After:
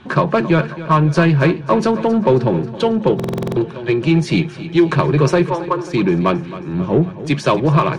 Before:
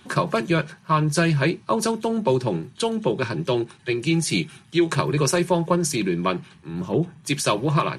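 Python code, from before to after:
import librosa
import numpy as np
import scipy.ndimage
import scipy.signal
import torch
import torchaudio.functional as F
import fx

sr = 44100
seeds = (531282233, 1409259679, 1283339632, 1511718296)

p1 = scipy.signal.sosfilt(scipy.signal.butter(2, 4300.0, 'lowpass', fs=sr, output='sos'), x)
p2 = fx.high_shelf(p1, sr, hz=2500.0, db=-9.5)
p3 = fx.cheby_ripple_highpass(p2, sr, hz=300.0, ripple_db=9, at=(5.5, 5.94))
p4 = 10.0 ** (-25.0 / 20.0) * np.tanh(p3 / 10.0 ** (-25.0 / 20.0))
p5 = p3 + (p4 * librosa.db_to_amplitude(-3.5))
p6 = fx.echo_feedback(p5, sr, ms=269, feedback_pct=60, wet_db=-15.0)
p7 = fx.buffer_glitch(p6, sr, at_s=(3.15,), block=2048, repeats=8)
y = p7 * librosa.db_to_amplitude(5.5)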